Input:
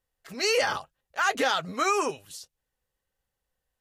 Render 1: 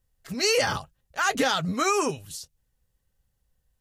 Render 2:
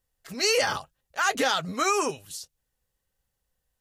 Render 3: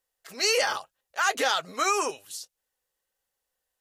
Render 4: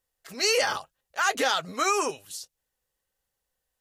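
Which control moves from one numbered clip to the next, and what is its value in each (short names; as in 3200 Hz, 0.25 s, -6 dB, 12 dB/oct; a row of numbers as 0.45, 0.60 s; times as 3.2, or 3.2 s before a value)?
tone controls, bass: +14, +5, -13, -4 dB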